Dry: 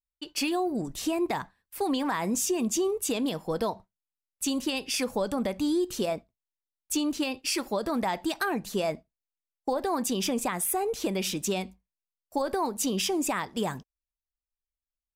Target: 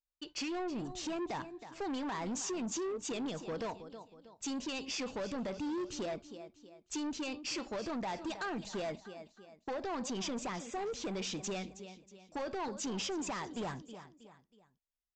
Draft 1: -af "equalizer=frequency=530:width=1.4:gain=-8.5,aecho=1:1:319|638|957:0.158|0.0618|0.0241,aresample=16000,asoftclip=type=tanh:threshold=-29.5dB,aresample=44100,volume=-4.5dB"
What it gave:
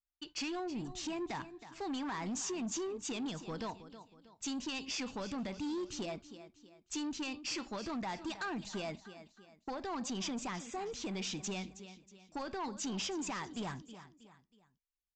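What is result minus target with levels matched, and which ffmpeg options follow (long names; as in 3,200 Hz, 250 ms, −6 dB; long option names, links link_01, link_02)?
500 Hz band −3.0 dB
-af "aecho=1:1:319|638|957:0.158|0.0618|0.0241,aresample=16000,asoftclip=type=tanh:threshold=-29.5dB,aresample=44100,volume=-4.5dB"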